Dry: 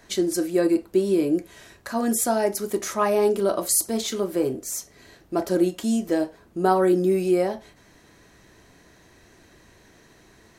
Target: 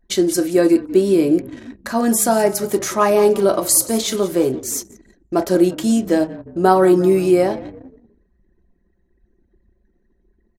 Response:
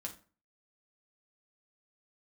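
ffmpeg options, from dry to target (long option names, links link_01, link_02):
-filter_complex "[0:a]asplit=5[link_01][link_02][link_03][link_04][link_05];[link_02]adelay=177,afreqshift=-32,volume=-17.5dB[link_06];[link_03]adelay=354,afreqshift=-64,volume=-23.2dB[link_07];[link_04]adelay=531,afreqshift=-96,volume=-28.9dB[link_08];[link_05]adelay=708,afreqshift=-128,volume=-34.5dB[link_09];[link_01][link_06][link_07][link_08][link_09]amix=inputs=5:normalize=0,anlmdn=0.158,volume=6.5dB"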